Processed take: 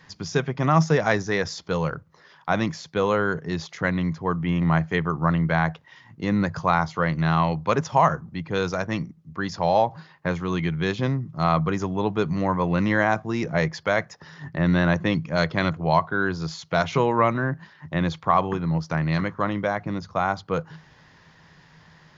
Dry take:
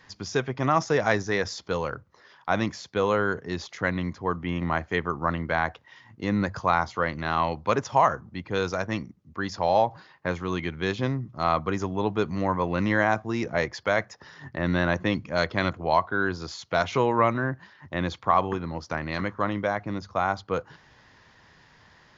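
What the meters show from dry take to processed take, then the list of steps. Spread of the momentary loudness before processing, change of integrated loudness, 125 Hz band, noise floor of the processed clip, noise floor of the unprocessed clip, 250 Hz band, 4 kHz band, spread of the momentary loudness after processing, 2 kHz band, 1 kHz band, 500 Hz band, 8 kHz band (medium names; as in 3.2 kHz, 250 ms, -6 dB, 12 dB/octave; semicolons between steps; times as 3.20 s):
9 LU, +2.5 dB, +7.0 dB, -54 dBFS, -57 dBFS, +4.5 dB, +1.5 dB, 8 LU, +1.5 dB, +1.5 dB, +1.5 dB, no reading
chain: peaking EQ 160 Hz +14.5 dB 0.21 oct; trim +1.5 dB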